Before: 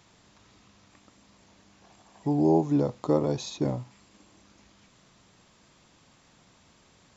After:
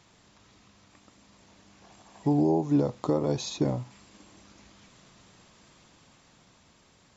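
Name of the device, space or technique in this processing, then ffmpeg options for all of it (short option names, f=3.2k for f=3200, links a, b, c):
low-bitrate web radio: -af "dynaudnorm=f=480:g=7:m=4dB,alimiter=limit=-14dB:level=0:latency=1:release=304" -ar 48000 -c:a libmp3lame -b:a 48k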